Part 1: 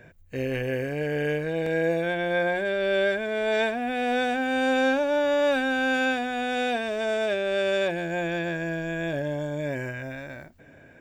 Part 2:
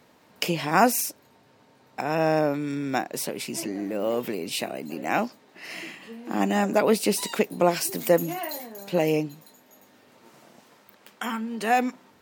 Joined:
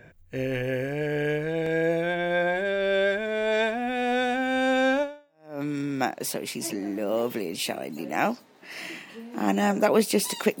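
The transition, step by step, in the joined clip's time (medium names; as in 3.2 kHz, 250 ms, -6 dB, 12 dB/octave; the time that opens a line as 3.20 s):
part 1
5.32 s: go over to part 2 from 2.25 s, crossfade 0.60 s exponential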